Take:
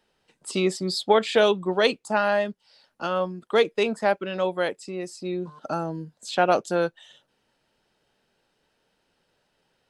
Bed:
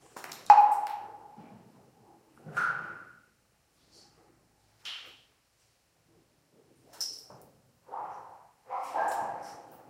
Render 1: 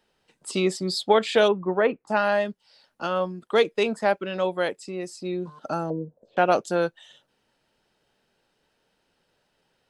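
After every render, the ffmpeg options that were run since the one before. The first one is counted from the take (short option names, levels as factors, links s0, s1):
-filter_complex "[0:a]asplit=3[s0][s1][s2];[s0]afade=t=out:st=1.47:d=0.02[s3];[s1]lowpass=f=2000:w=0.5412,lowpass=f=2000:w=1.3066,afade=t=in:st=1.47:d=0.02,afade=t=out:st=2.07:d=0.02[s4];[s2]afade=t=in:st=2.07:d=0.02[s5];[s3][s4][s5]amix=inputs=3:normalize=0,asettb=1/sr,asplit=3[s6][s7][s8];[s6]atrim=end=5.904[s9];[s7]atrim=start=5.9:end=6.37,asetpts=PTS-STARTPTS,afade=t=in:d=0.004:c=qsin,afade=t=out:st=0.466:d=0.004:c=qsin,lowpass=f=530:t=q:w=4.9[s10];[s8]atrim=start=6.366[s11];[s9][s10]acrossfade=d=0.004:c1=hsin:c2=qsin[s12];[s12][s11]acrossfade=d=0.004:c1=qsin:c2=hsin"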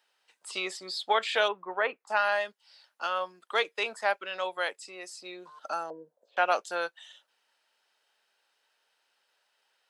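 -filter_complex "[0:a]highpass=910,acrossover=split=3700[s0][s1];[s1]acompressor=threshold=0.01:ratio=4:attack=1:release=60[s2];[s0][s2]amix=inputs=2:normalize=0"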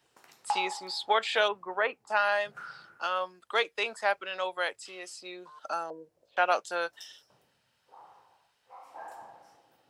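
-filter_complex "[1:a]volume=0.2[s0];[0:a][s0]amix=inputs=2:normalize=0"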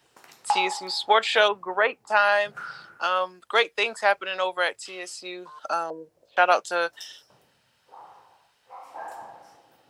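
-af "volume=2.11"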